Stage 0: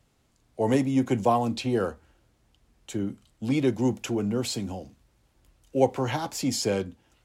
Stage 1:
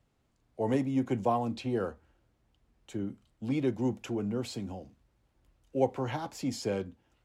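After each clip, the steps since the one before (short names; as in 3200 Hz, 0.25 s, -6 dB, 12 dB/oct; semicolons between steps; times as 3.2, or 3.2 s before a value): high shelf 3700 Hz -8.5 dB; gain -5.5 dB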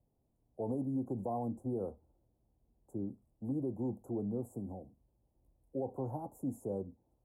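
inverse Chebyshev band-stop 1900–4700 Hz, stop band 60 dB; limiter -24 dBFS, peak gain reduction 10 dB; gain -4 dB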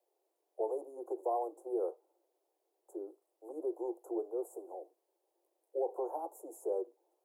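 steep high-pass 340 Hz 96 dB/oct; gain +4.5 dB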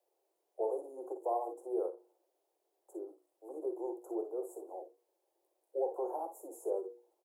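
notches 60/120/180/240/300/360/420/480 Hz; on a send: early reflections 48 ms -11 dB, 59 ms -10 dB; on the sum: ending taper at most 190 dB/s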